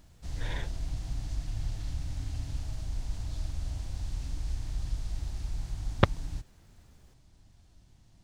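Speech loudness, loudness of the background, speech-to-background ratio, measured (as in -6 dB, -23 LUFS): -33.5 LUFS, -38.5 LUFS, 5.0 dB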